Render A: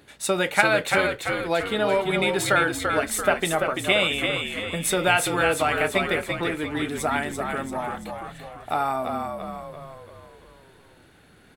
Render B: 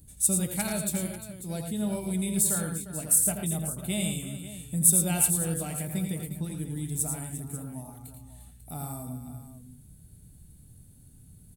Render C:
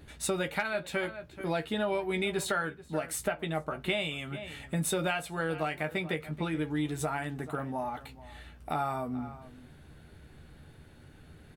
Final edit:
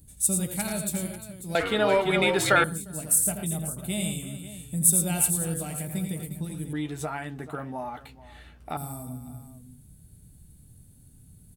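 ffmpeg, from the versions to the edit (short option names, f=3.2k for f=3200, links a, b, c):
-filter_complex "[1:a]asplit=3[a][b][c];[a]atrim=end=1.552[d];[0:a]atrim=start=1.548:end=2.642[e];[b]atrim=start=2.638:end=6.732[f];[2:a]atrim=start=6.728:end=8.772[g];[c]atrim=start=8.768[h];[d][e]acrossfade=d=0.004:c1=hsin:c2=hsin[i];[i][f]acrossfade=d=0.004:c1=hsin:c2=hsin[j];[j][g]acrossfade=d=0.004:c1=hsin:c2=hsin[k];[k][h]acrossfade=d=0.004:c1=hsin:c2=hsin"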